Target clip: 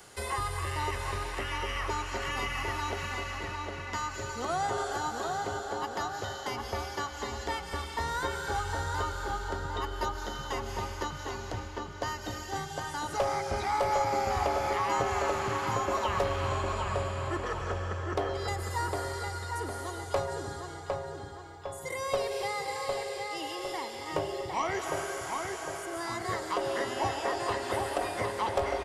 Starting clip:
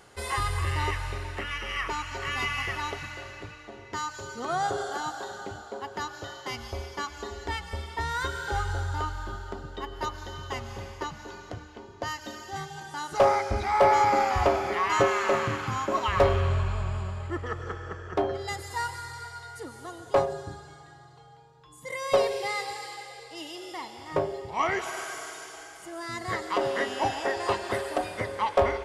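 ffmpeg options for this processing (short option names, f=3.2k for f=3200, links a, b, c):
-filter_complex "[0:a]highshelf=f=4.5k:g=9.5,acrossover=split=120|340|1200|3000[a][b][c][d][e];[a]acompressor=threshold=-38dB:ratio=4[f];[b]acompressor=threshold=-45dB:ratio=4[g];[c]acompressor=threshold=-30dB:ratio=4[h];[d]acompressor=threshold=-43dB:ratio=4[i];[e]acompressor=threshold=-45dB:ratio=4[j];[f][g][h][i][j]amix=inputs=5:normalize=0,asplit=2[k][l];[l]adelay=756,lowpass=f=2.9k:p=1,volume=-3.5dB,asplit=2[m][n];[n]adelay=756,lowpass=f=2.9k:p=1,volume=0.51,asplit=2[o][p];[p]adelay=756,lowpass=f=2.9k:p=1,volume=0.51,asplit=2[q][r];[r]adelay=756,lowpass=f=2.9k:p=1,volume=0.51,asplit=2[s][t];[t]adelay=756,lowpass=f=2.9k:p=1,volume=0.51,asplit=2[u][v];[v]adelay=756,lowpass=f=2.9k:p=1,volume=0.51,asplit=2[w][x];[x]adelay=756,lowpass=f=2.9k:p=1,volume=0.51[y];[k][m][o][q][s][u][w][y]amix=inputs=8:normalize=0"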